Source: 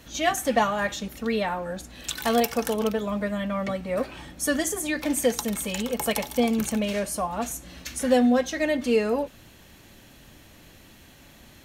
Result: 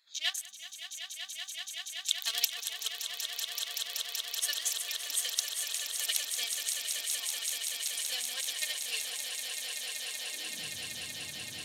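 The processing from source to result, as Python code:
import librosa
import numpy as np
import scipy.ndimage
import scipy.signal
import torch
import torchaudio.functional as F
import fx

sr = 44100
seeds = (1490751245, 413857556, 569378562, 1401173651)

p1 = fx.wiener(x, sr, points=15)
p2 = fx.spec_erase(p1, sr, start_s=0.46, length_s=1.46, low_hz=220.0, high_hz=5800.0)
p3 = fx.level_steps(p2, sr, step_db=23)
p4 = p2 + (p3 * librosa.db_to_amplitude(0.5))
p5 = fx.filter_sweep_highpass(p4, sr, from_hz=3600.0, to_hz=110.0, start_s=9.83, end_s=10.72, q=2.3)
p6 = fx.echo_swell(p5, sr, ms=190, loudest=8, wet_db=-7)
p7 = fx.upward_expand(p6, sr, threshold_db=-30.0, expansion=1.5)
y = p7 * librosa.db_to_amplitude(-2.5)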